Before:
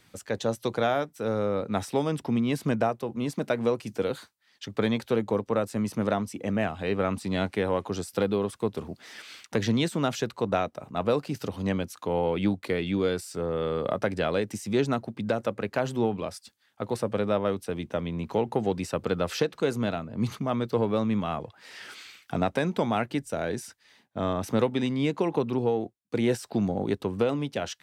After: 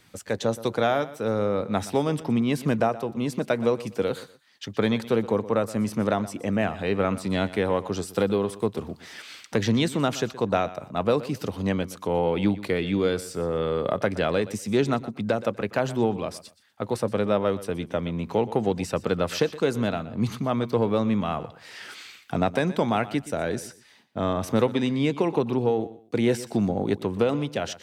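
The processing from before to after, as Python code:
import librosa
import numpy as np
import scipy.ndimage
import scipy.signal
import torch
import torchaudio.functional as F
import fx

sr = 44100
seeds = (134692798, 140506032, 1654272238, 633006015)

y = fx.echo_feedback(x, sr, ms=122, feedback_pct=24, wet_db=-16.5)
y = F.gain(torch.from_numpy(y), 2.5).numpy()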